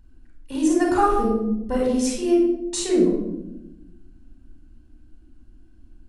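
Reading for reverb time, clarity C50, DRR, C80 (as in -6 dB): 0.95 s, 1.5 dB, -2.0 dB, 4.5 dB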